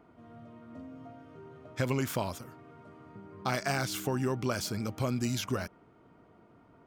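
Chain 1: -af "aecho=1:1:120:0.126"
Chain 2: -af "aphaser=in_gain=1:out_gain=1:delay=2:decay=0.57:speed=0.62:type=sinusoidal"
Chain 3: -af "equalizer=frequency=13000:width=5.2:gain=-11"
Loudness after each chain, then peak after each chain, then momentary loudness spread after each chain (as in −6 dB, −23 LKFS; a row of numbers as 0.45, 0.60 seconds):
−33.0, −31.0, −33.0 LKFS; −16.5, −14.5, −16.5 dBFS; 20, 22, 20 LU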